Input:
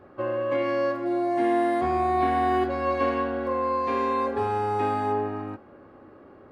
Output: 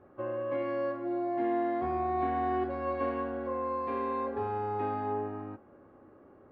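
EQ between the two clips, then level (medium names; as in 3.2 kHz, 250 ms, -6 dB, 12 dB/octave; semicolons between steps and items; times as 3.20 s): Gaussian low-pass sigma 1.7 samples; treble shelf 2.7 kHz -9 dB; -6.5 dB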